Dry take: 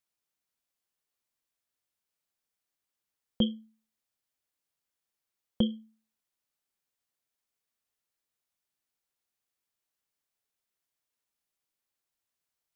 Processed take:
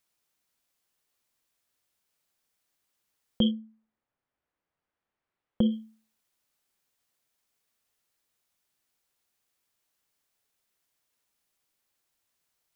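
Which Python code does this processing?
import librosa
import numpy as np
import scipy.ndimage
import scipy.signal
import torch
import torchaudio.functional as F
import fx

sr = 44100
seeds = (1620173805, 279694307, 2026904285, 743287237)

p1 = fx.lowpass(x, sr, hz=fx.line((3.5, 1400.0), (5.7, 2100.0)), slope=12, at=(3.5, 5.7), fade=0.02)
p2 = fx.over_compress(p1, sr, threshold_db=-29.0, ratio=-0.5)
y = p1 + F.gain(torch.from_numpy(p2), -0.5).numpy()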